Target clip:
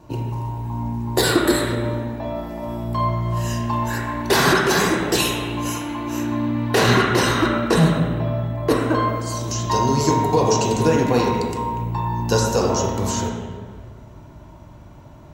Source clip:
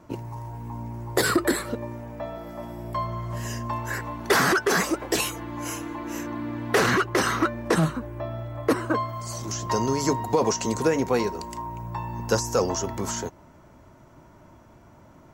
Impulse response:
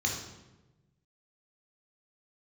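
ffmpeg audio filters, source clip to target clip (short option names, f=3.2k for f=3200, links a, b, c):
-filter_complex "[0:a]asplit=2[a][b];[1:a]atrim=start_sample=2205,asetrate=24255,aresample=44100[c];[b][c]afir=irnorm=-1:irlink=0,volume=-12dB[d];[a][d]amix=inputs=2:normalize=0,volume=5dB"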